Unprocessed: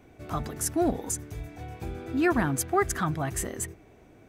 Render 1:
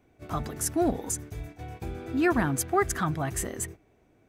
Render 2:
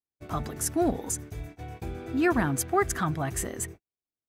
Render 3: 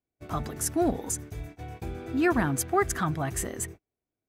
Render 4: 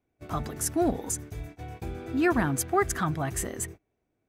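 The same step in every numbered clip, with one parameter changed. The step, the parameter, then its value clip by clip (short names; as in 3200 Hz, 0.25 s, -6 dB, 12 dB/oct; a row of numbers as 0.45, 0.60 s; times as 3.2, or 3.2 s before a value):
gate, range: -9, -50, -36, -24 dB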